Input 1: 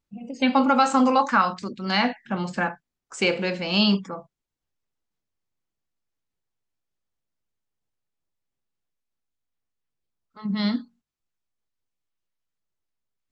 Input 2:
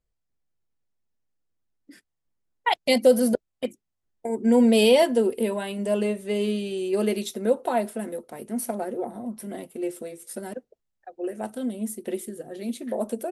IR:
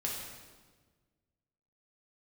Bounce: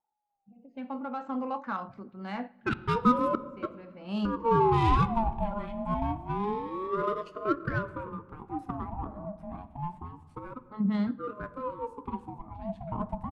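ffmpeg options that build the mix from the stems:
-filter_complex "[0:a]dynaudnorm=framelen=360:gausssize=5:maxgain=16dB,adelay=350,volume=-8.5dB,afade=type=in:start_time=3.92:duration=0.67:silence=0.316228,afade=type=out:start_time=10.68:duration=0.36:silence=0.316228,asplit=2[link_01][link_02];[link_02]volume=-23dB[link_03];[1:a]aeval=exprs='val(0)*sin(2*PI*630*n/s+630*0.35/0.27*sin(2*PI*0.27*n/s))':channel_layout=same,volume=-3.5dB,asplit=3[link_04][link_05][link_06];[link_05]volume=-12dB[link_07];[link_06]apad=whole_len=602409[link_08];[link_01][link_08]sidechaincompress=threshold=-38dB:ratio=8:attack=5.8:release=811[link_09];[2:a]atrim=start_sample=2205[link_10];[link_03][link_07]amix=inputs=2:normalize=0[link_11];[link_11][link_10]afir=irnorm=-1:irlink=0[link_12];[link_09][link_04][link_12]amix=inputs=3:normalize=0,highshelf=frequency=2100:gain=-8.5,adynamicsmooth=sensitivity=1.5:basefreq=2200"

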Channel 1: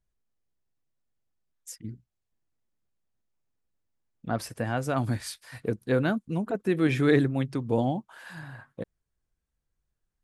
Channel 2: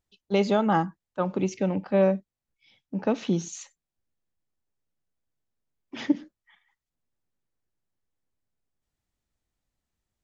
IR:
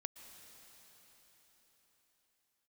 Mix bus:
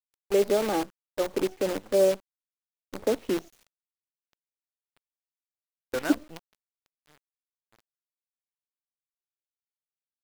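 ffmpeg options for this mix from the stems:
-filter_complex "[0:a]highpass=430,volume=-2dB[link_01];[1:a]highpass=frequency=290:width=0.5412,highpass=frequency=290:width=1.3066,lowshelf=frequency=690:width_type=q:width=1.5:gain=9,volume=-8dB,asplit=2[link_02][link_03];[link_03]apad=whole_len=451437[link_04];[link_01][link_04]sidechaingate=range=-33dB:threshold=-50dB:ratio=16:detection=peak[link_05];[link_05][link_02]amix=inputs=2:normalize=0,lowpass=3300,acrusher=bits=6:dc=4:mix=0:aa=0.000001"

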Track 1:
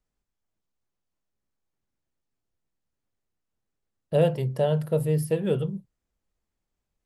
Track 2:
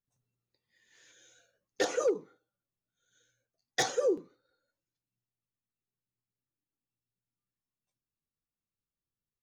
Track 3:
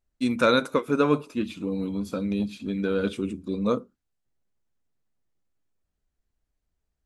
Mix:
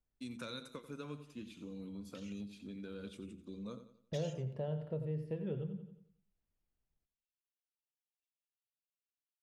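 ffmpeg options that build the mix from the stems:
ffmpeg -i stem1.wav -i stem2.wav -i stem3.wav -filter_complex "[0:a]lowpass=2300,equalizer=frequency=1000:width_type=o:width=2.9:gain=-6.5,volume=-5dB,asplit=3[link_01][link_02][link_03];[link_02]volume=-10.5dB[link_04];[1:a]alimiter=level_in=4.5dB:limit=-24dB:level=0:latency=1,volume=-4.5dB,acompressor=threshold=-42dB:ratio=2,highpass=frequency=2800:width_type=q:width=4.9,adelay=350,volume=-3dB[link_05];[2:a]acrossover=split=170|3000[link_06][link_07][link_08];[link_07]acompressor=threshold=-34dB:ratio=3[link_09];[link_06][link_09][link_08]amix=inputs=3:normalize=0,volume=-14dB,asplit=2[link_10][link_11];[link_11]volume=-13.5dB[link_12];[link_03]apad=whole_len=431047[link_13];[link_05][link_13]sidechaingate=range=-13dB:threshold=-36dB:ratio=16:detection=peak[link_14];[link_04][link_12]amix=inputs=2:normalize=0,aecho=0:1:89|178|267|356|445|534:1|0.4|0.16|0.064|0.0256|0.0102[link_15];[link_01][link_14][link_10][link_15]amix=inputs=4:normalize=0,acompressor=threshold=-41dB:ratio=2" out.wav

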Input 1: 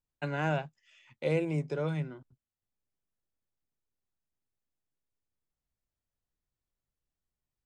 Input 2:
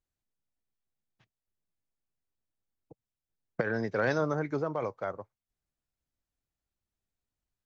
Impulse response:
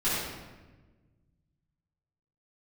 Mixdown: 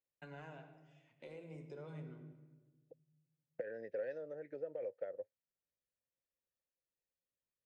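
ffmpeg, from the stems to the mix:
-filter_complex "[0:a]highpass=frequency=280:poles=1,acompressor=threshold=-36dB:ratio=6,aphaser=in_gain=1:out_gain=1:delay=4:decay=0.25:speed=0.53:type=sinusoidal,volume=-16dB,asplit=2[link_01][link_02];[link_02]volume=-15.5dB[link_03];[1:a]acompressor=threshold=-34dB:ratio=12,asplit=3[link_04][link_05][link_06];[link_04]bandpass=frequency=530:width_type=q:width=8,volume=0dB[link_07];[link_05]bandpass=frequency=1840:width_type=q:width=8,volume=-6dB[link_08];[link_06]bandpass=frequency=2480:width_type=q:width=8,volume=-9dB[link_09];[link_07][link_08][link_09]amix=inputs=3:normalize=0,volume=1dB[link_10];[2:a]atrim=start_sample=2205[link_11];[link_03][link_11]afir=irnorm=-1:irlink=0[link_12];[link_01][link_10][link_12]amix=inputs=3:normalize=0,lowshelf=frequency=350:gain=7"

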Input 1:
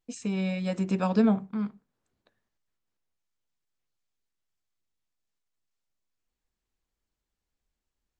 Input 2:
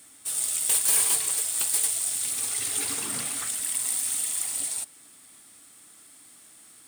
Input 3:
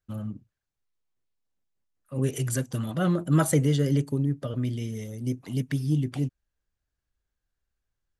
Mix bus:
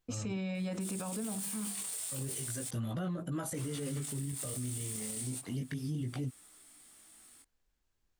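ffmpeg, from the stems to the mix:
ffmpeg -i stem1.wav -i stem2.wav -i stem3.wav -filter_complex "[0:a]bandreject=frequency=50:width_type=h:width=6,bandreject=frequency=100:width_type=h:width=6,bandreject=frequency=150:width_type=h:width=6,bandreject=frequency=200:width_type=h:width=6,acompressor=threshold=-25dB:ratio=6,volume=2dB[link_01];[1:a]adelay=550,volume=-3.5dB,asplit=3[link_02][link_03][link_04];[link_02]atrim=end=2.69,asetpts=PTS-STARTPTS,afade=type=out:start_time=2.686:duration=0.004:curve=hsin[link_05];[link_03]atrim=start=2.69:end=3.54,asetpts=PTS-STARTPTS,volume=0[link_06];[link_04]atrim=start=3.54,asetpts=PTS-STARTPTS,afade=type=in:duration=0.004:curve=hsin[link_07];[link_05][link_06][link_07]concat=n=3:v=0:a=1[link_08];[2:a]volume=0.5dB[link_09];[link_08][link_09]amix=inputs=2:normalize=0,flanger=delay=16:depth=8:speed=0.31,acompressor=threshold=-28dB:ratio=6,volume=0dB[link_10];[link_01][link_10]amix=inputs=2:normalize=0,alimiter=level_in=5.5dB:limit=-24dB:level=0:latency=1:release=36,volume=-5.5dB" out.wav

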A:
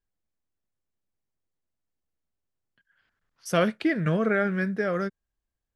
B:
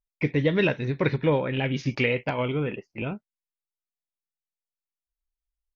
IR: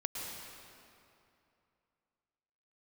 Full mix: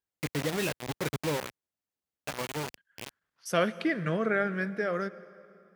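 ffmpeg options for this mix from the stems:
-filter_complex "[0:a]lowshelf=frequency=240:gain=-7,volume=-3dB,asplit=2[link_01][link_02];[link_02]volume=-16.5dB[link_03];[1:a]acrusher=bits=3:mix=0:aa=0.000001,volume=-9.5dB,asplit=3[link_04][link_05][link_06];[link_04]atrim=end=1.5,asetpts=PTS-STARTPTS,afade=type=out:start_time=1.496:duration=0.004:curve=hsin[link_07];[link_05]atrim=start=1.5:end=2.26,asetpts=PTS-STARTPTS,volume=0[link_08];[link_06]atrim=start=2.26,asetpts=PTS-STARTPTS,afade=type=in:duration=0.004:curve=hsin[link_09];[link_07][link_08][link_09]concat=n=3:v=0:a=1[link_10];[2:a]atrim=start_sample=2205[link_11];[link_03][link_11]afir=irnorm=-1:irlink=0[link_12];[link_01][link_10][link_12]amix=inputs=3:normalize=0,highpass=70"

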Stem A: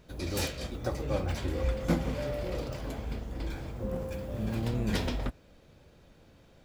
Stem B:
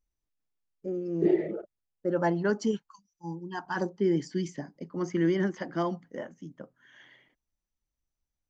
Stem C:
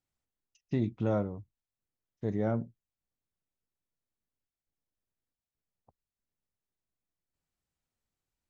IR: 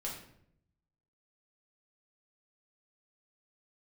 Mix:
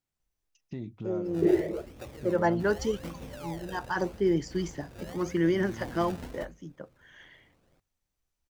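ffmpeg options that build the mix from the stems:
-filter_complex "[0:a]lowpass=3400,bandreject=frequency=60:width_type=h:width=6,bandreject=frequency=120:width_type=h:width=6,bandreject=frequency=180:width_type=h:width=6,bandreject=frequency=240:width_type=h:width=6,acrusher=samples=28:mix=1:aa=0.000001:lfo=1:lforange=28:lforate=0.86,adelay=1150,volume=-8.5dB[link_01];[1:a]equalizer=frequency=230:width_type=o:width=0.5:gain=-8.5,adelay=200,volume=2dB[link_02];[2:a]volume=0dB[link_03];[link_01][link_03]amix=inputs=2:normalize=0,alimiter=level_in=4.5dB:limit=-24dB:level=0:latency=1:release=200,volume=-4.5dB,volume=0dB[link_04];[link_02][link_04]amix=inputs=2:normalize=0,bandreject=frequency=50:width_type=h:width=6,bandreject=frequency=100:width_type=h:width=6"

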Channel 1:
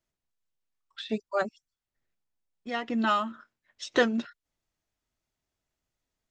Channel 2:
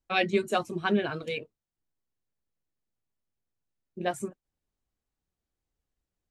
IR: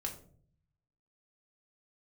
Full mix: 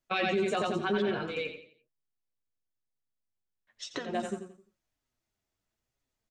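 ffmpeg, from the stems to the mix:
-filter_complex "[0:a]acompressor=threshold=-33dB:ratio=10,volume=-4dB,asplit=3[link_01][link_02][link_03];[link_01]atrim=end=1.02,asetpts=PTS-STARTPTS,afade=type=out:start_time=1.016:duration=0.004:curve=hsin[link_04];[link_02]atrim=start=1.02:end=3.67,asetpts=PTS-STARTPTS,volume=0[link_05];[link_03]atrim=start=3.67,asetpts=PTS-STARTPTS,afade=type=in:duration=0.004:curve=hsin[link_06];[link_04][link_05][link_06]concat=n=3:v=0:a=1,asplit=3[link_07][link_08][link_09];[link_08]volume=-13.5dB[link_10];[1:a]agate=range=-11dB:threshold=-38dB:ratio=16:detection=peak,lowpass=frequency=7900:width=0.5412,lowpass=frequency=7900:width=1.3066,volume=-1.5dB,asplit=2[link_11][link_12];[link_12]volume=-4dB[link_13];[link_09]apad=whole_len=278046[link_14];[link_11][link_14]sidechaincompress=threshold=-56dB:ratio=3:attack=11:release=579[link_15];[link_10][link_13]amix=inputs=2:normalize=0,aecho=0:1:87|174|261|348|435:1|0.36|0.13|0.0467|0.0168[link_16];[link_07][link_15][link_16]amix=inputs=3:normalize=0,acontrast=72,flanger=delay=7:depth=4.2:regen=49:speed=1:shape=triangular,alimiter=limit=-21dB:level=0:latency=1:release=30"

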